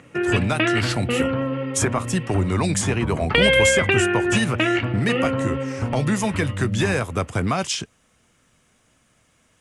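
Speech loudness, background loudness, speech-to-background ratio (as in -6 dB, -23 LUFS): -24.5 LUFS, -22.5 LUFS, -2.0 dB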